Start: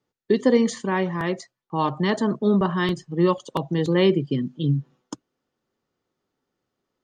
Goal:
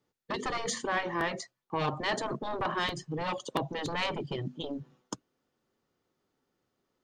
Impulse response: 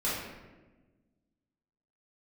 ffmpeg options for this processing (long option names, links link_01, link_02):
-af "asoftclip=type=tanh:threshold=-17.5dB,afftfilt=real='re*lt(hypot(re,im),0.282)':imag='im*lt(hypot(re,im),0.282)':win_size=1024:overlap=0.75"